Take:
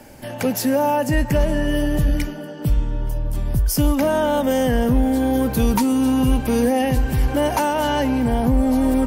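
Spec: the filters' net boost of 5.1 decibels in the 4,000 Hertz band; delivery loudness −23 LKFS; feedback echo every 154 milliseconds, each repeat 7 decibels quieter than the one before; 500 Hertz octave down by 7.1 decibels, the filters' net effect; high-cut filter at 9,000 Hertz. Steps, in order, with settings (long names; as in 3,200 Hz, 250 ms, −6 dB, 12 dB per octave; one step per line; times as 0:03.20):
low-pass filter 9,000 Hz
parametric band 500 Hz −8.5 dB
parametric band 4,000 Hz +8 dB
repeating echo 154 ms, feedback 45%, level −7 dB
level −2.5 dB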